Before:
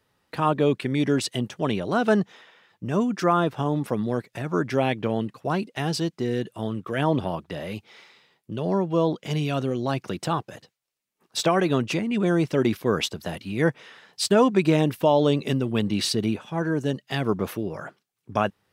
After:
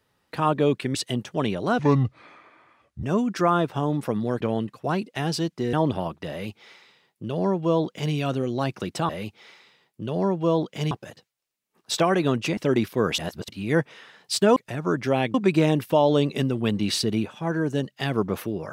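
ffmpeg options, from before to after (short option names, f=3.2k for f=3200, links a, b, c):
-filter_complex "[0:a]asplit=13[a][b][c][d][e][f][g][h][i][j][k][l][m];[a]atrim=end=0.952[n];[b]atrim=start=1.198:end=2.044[o];[c]atrim=start=2.04:end=2.86,asetpts=PTS-STARTPTS,asetrate=29106,aresample=44100[p];[d]atrim=start=2.856:end=4.232[q];[e]atrim=start=5.008:end=6.342[r];[f]atrim=start=7.008:end=10.372[s];[g]atrim=start=7.588:end=9.412[t];[h]atrim=start=10.368:end=12.032[u];[i]atrim=start=12.458:end=13.072[v];[j]atrim=start=13.068:end=13.372,asetpts=PTS-STARTPTS,areverse[w];[k]atrim=start=13.368:end=14.452[x];[l]atrim=start=4.228:end=5.012[y];[m]atrim=start=14.448[z];[n][o]acrossfade=d=0.004:c1=hsin:c2=hsin[aa];[aa][p]acrossfade=d=0.004:c1=hsin:c2=hsin[ab];[ab][q]acrossfade=d=0.004:c1=hsin:c2=hsin[ac];[ac][r]acrossfade=d=0.004:c1=hsin:c2=hsin[ad];[ad][s]acrossfade=d=0.004:c1=hsin:c2=hsin[ae];[ae][t]acrossfade=d=0.004:c1=hsin:c2=hsin[af];[af][u]acrossfade=d=0.004:c1=hsin:c2=hsin[ag];[ag][v]acrossfade=d=0.004:c1=hsin:c2=hsin[ah];[ah][w]acrossfade=d=0.004:c1=hsin:c2=hsin[ai];[ai][x]acrossfade=d=0.004:c1=hsin:c2=hsin[aj];[aj][y]acrossfade=d=0.004:c1=hsin:c2=hsin[ak];[ak][z]acrossfade=d=0.004:c1=hsin:c2=hsin"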